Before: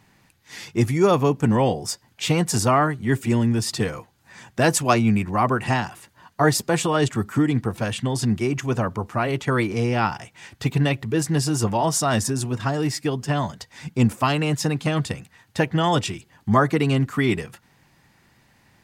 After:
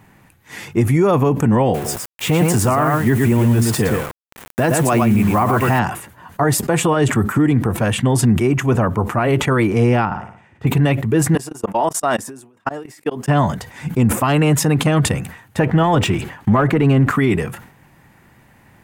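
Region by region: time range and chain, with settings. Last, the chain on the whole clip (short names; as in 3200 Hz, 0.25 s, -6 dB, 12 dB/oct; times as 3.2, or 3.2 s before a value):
1.74–5.79 echo 0.113 s -5.5 dB + requantised 6-bit, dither none
10.05–10.67 LPF 1300 Hz 6 dB/oct + flutter echo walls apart 9.9 m, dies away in 0.68 s + upward expander, over -44 dBFS
11.35–13.28 HPF 290 Hz + level quantiser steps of 24 dB + upward expander 2.5:1, over -42 dBFS
15.59–17.16 LPF 2900 Hz 6 dB/oct + sample leveller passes 1 + mismatched tape noise reduction encoder only
whole clip: bell 4800 Hz -12 dB 1.3 oct; maximiser +15 dB; sustainer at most 96 dB/s; gain -6 dB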